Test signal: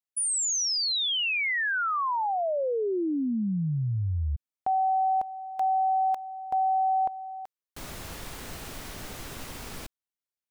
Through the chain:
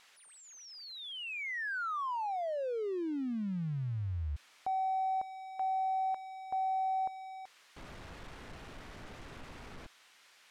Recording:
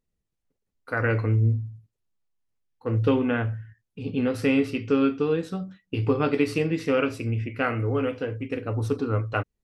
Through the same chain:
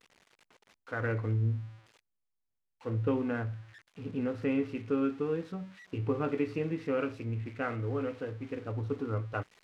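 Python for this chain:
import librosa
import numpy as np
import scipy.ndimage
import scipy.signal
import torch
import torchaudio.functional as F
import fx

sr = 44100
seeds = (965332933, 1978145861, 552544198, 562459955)

y = x + 0.5 * 10.0 ** (-23.0 / 20.0) * np.diff(np.sign(x), prepend=np.sign(x[:1]))
y = scipy.signal.sosfilt(scipy.signal.butter(2, 2000.0, 'lowpass', fs=sr, output='sos'), y)
y = F.gain(torch.from_numpy(y), -8.0).numpy()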